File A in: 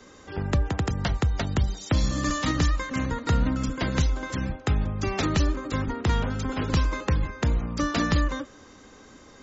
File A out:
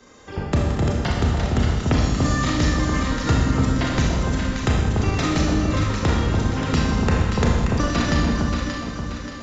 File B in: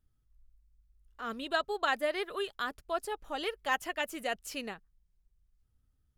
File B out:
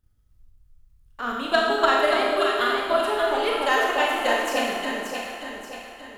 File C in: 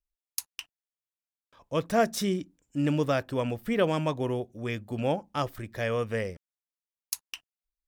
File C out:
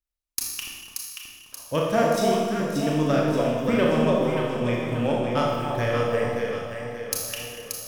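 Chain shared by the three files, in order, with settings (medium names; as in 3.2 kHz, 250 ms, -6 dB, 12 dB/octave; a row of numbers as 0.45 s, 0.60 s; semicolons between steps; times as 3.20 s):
single-diode clipper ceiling -11.5 dBFS; transient shaper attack +7 dB, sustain -4 dB; echo whose repeats swap between lows and highs 290 ms, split 1 kHz, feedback 68%, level -2 dB; Schroeder reverb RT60 1.3 s, combs from 26 ms, DRR -2 dB; peak normalisation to -6 dBFS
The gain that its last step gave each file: -1.5 dB, +4.0 dB, -2.0 dB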